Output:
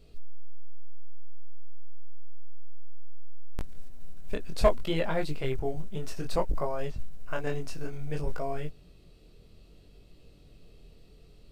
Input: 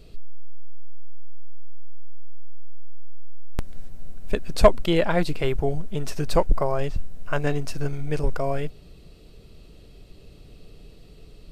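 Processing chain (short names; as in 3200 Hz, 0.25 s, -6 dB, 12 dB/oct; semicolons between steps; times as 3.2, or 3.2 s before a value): chorus 0.59 Hz, delay 19 ms, depth 6.7 ms; short-mantissa float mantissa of 6-bit; gain -4.5 dB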